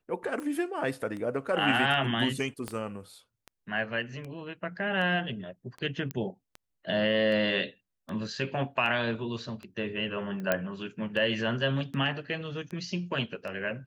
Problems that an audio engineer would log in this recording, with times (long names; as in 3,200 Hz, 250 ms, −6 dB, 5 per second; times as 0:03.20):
scratch tick 78 rpm −27 dBFS
0:02.68: click −20 dBFS
0:06.11: click −19 dBFS
0:10.52: click −11 dBFS